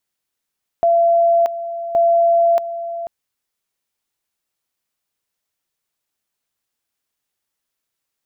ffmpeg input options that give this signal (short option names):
-f lavfi -i "aevalsrc='pow(10,(-10.5-12.5*gte(mod(t,1.12),0.63))/20)*sin(2*PI*679*t)':d=2.24:s=44100"